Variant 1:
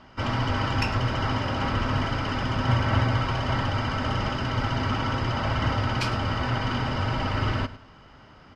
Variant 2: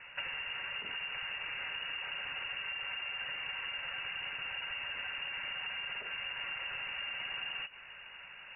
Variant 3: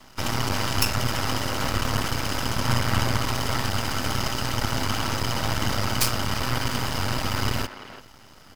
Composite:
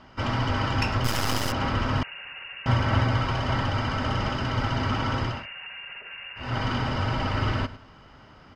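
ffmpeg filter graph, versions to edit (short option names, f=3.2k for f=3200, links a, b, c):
-filter_complex "[1:a]asplit=2[a][b];[0:a]asplit=4[c][d][e][f];[c]atrim=end=1.042[g];[2:a]atrim=start=1.038:end=1.522[h];[d]atrim=start=1.518:end=2.032[i];[a]atrim=start=2.028:end=2.662[j];[e]atrim=start=2.658:end=5.47[k];[b]atrim=start=5.23:end=6.59[l];[f]atrim=start=6.35[m];[g][h]acrossfade=d=0.004:c1=hsin:c2=hsin[n];[n][i]acrossfade=d=0.004:c1=hsin:c2=hsin[o];[o][j]acrossfade=d=0.004:c1=hsin:c2=hsin[p];[p][k]acrossfade=d=0.004:c1=hsin:c2=hsin[q];[q][l]acrossfade=d=0.24:c1=tri:c2=tri[r];[r][m]acrossfade=d=0.24:c1=tri:c2=tri"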